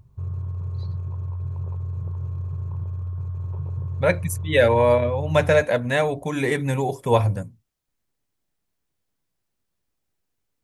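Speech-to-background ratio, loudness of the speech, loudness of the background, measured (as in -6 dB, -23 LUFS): 9.0 dB, -21.5 LUFS, -30.5 LUFS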